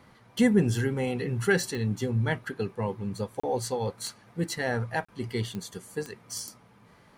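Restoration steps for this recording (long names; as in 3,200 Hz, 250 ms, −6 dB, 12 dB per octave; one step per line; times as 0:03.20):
click removal
repair the gap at 0:03.40/0:05.05, 35 ms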